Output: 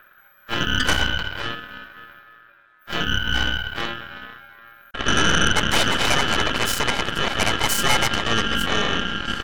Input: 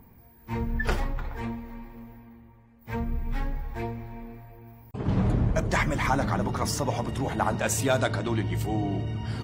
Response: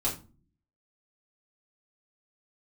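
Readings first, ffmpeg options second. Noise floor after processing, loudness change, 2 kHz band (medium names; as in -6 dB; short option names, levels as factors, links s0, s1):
-54 dBFS, +7.5 dB, +13.0 dB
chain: -af "aeval=exprs='val(0)*sin(2*PI*1500*n/s)':c=same,aeval=exprs='0.266*(cos(1*acos(clip(val(0)/0.266,-1,1)))-cos(1*PI/2))+0.0944*(cos(8*acos(clip(val(0)/0.266,-1,1)))-cos(8*PI/2))':c=same,volume=1.5"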